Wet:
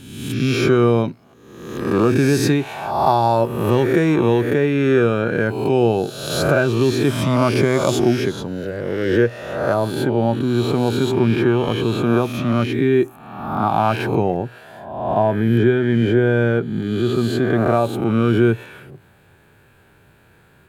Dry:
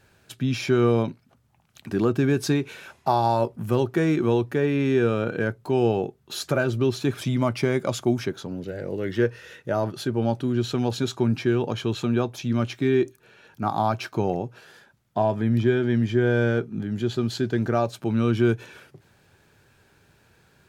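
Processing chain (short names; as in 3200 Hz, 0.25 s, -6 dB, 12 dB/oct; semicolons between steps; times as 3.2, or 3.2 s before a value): spectral swells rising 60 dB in 1.05 s; bell 5600 Hz -4 dB 0.84 oct, from 9.74 s -13 dB; gain +4.5 dB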